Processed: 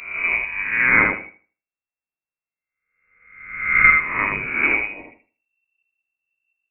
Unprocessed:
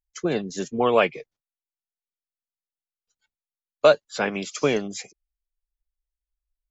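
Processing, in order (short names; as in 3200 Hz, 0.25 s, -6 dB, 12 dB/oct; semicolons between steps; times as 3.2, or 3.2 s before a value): spectral swells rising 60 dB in 0.87 s; thinning echo 79 ms, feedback 24%, high-pass 170 Hz, level -4 dB; inverted band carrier 2700 Hz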